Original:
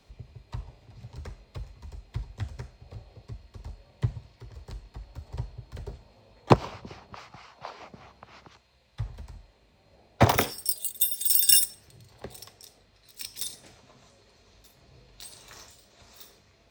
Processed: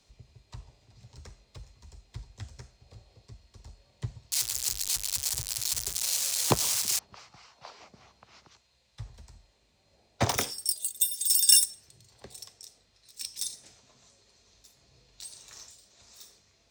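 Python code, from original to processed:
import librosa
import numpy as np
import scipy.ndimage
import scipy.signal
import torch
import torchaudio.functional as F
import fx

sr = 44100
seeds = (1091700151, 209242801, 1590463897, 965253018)

y = fx.crossing_spikes(x, sr, level_db=-15.0, at=(4.32, 6.99))
y = fx.peak_eq(y, sr, hz=6800.0, db=12.0, octaves=1.7)
y = y * 10.0 ** (-8.0 / 20.0)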